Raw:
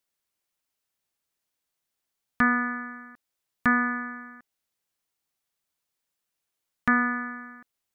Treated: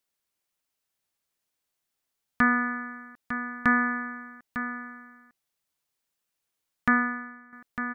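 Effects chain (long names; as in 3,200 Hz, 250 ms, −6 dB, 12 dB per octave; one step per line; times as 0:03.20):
single-tap delay 902 ms −10 dB
0:06.92–0:07.53: expander for the loud parts 1.5 to 1, over −41 dBFS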